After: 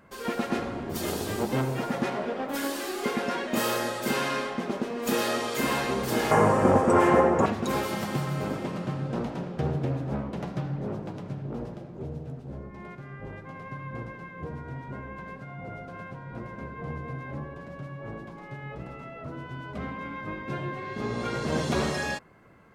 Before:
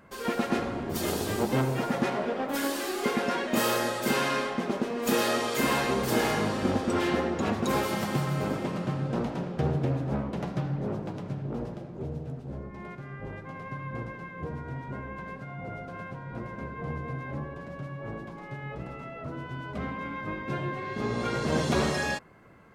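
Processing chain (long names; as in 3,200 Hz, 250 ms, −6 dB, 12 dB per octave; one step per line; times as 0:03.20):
0:06.31–0:07.46: octave-band graphic EQ 125/500/1,000/2,000/4,000/8,000 Hz +10/+9/+11/+4/−12/+8 dB
level −1 dB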